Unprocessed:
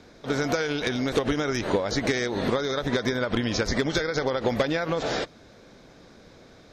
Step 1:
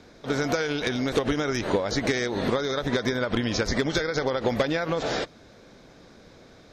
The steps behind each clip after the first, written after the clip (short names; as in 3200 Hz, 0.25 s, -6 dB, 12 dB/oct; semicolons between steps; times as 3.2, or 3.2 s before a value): nothing audible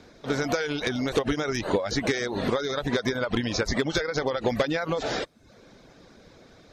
reverb removal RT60 0.53 s